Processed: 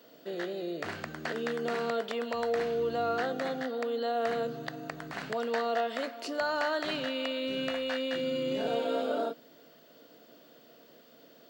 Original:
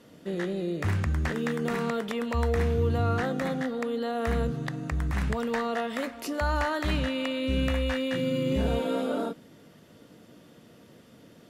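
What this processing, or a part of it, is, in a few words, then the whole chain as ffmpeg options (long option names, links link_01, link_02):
old television with a line whistle: -af "highpass=frequency=170:width=0.5412,highpass=frequency=170:width=1.3066,equalizer=frequency=190:width_type=q:width=4:gain=-9,equalizer=frequency=460:width_type=q:width=4:gain=4,equalizer=frequency=670:width_type=q:width=4:gain=9,equalizer=frequency=1500:width_type=q:width=4:gain=5,equalizer=frequency=3000:width_type=q:width=4:gain=5,equalizer=frequency=4400:width_type=q:width=4:gain=9,lowpass=frequency=8800:width=0.5412,lowpass=frequency=8800:width=1.3066,aeval=exprs='val(0)+0.00158*sin(2*PI*15734*n/s)':channel_layout=same,volume=-5.5dB"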